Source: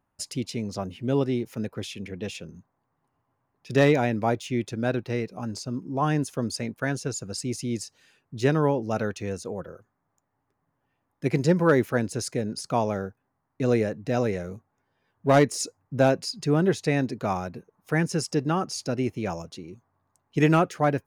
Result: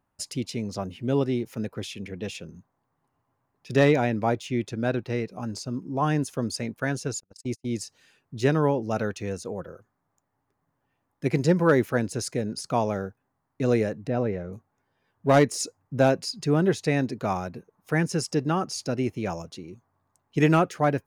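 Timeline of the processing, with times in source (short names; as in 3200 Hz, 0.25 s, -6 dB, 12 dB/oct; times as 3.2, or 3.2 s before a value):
3.77–5.3 high shelf 7800 Hz -4.5 dB
7.2–7.74 gate -31 dBFS, range -43 dB
14.07–14.53 tape spacing loss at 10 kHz 30 dB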